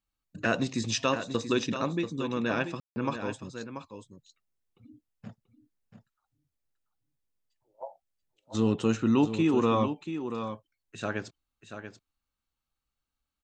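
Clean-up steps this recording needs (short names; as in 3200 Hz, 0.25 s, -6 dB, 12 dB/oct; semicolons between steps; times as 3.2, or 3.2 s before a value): room tone fill 2.8–2.96; inverse comb 0.685 s -9.5 dB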